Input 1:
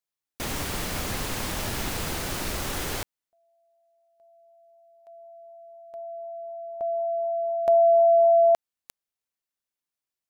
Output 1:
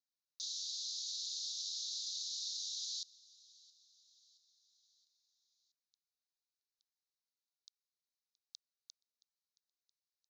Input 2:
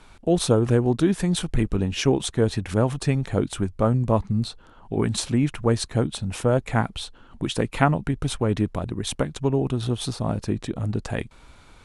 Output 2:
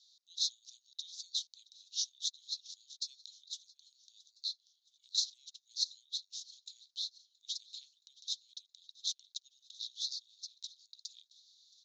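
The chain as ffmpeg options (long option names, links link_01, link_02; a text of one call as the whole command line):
ffmpeg -i in.wav -filter_complex "[0:a]asuperpass=centerf=5100:order=12:qfactor=1.6,aemphasis=mode=reproduction:type=50fm,asplit=2[link_01][link_02];[link_02]aecho=0:1:672|1344|2016|2688:0.0708|0.0382|0.0206|0.0111[link_03];[link_01][link_03]amix=inputs=2:normalize=0,volume=4dB" out.wav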